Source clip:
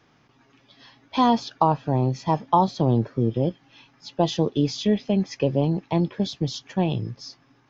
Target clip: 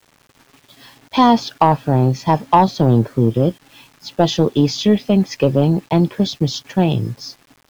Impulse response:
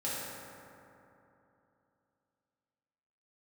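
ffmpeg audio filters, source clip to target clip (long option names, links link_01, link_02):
-filter_complex "[0:a]asplit=2[link_01][link_02];[link_02]aeval=exprs='sgn(val(0))*max(abs(val(0))-0.0075,0)':channel_layout=same,volume=-11.5dB[link_03];[link_01][link_03]amix=inputs=2:normalize=0,acontrast=62,acrusher=bits=7:mix=0:aa=0.000001"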